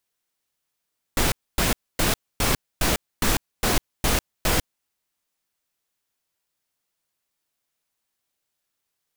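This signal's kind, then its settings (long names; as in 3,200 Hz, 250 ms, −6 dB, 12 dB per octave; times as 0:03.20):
noise bursts pink, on 0.15 s, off 0.26 s, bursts 9, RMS −20.5 dBFS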